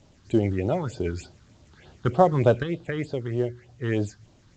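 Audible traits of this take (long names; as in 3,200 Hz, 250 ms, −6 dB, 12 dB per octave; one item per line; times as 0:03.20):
phaser sweep stages 6, 3.3 Hz, lowest notch 610–2,200 Hz
a quantiser's noise floor 10 bits, dither none
sample-and-hold tremolo 1.9 Hz
A-law companding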